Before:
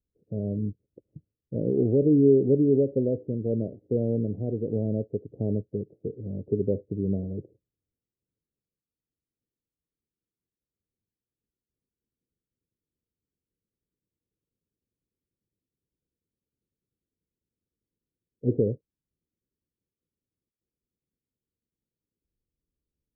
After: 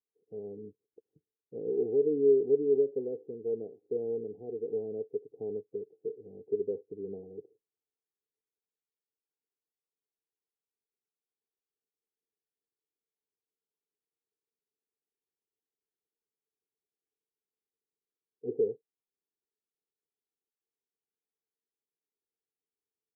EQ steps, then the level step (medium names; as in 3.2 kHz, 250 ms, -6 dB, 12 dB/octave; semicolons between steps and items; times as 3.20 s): two resonant band-passes 590 Hz, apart 0.82 oct; 0.0 dB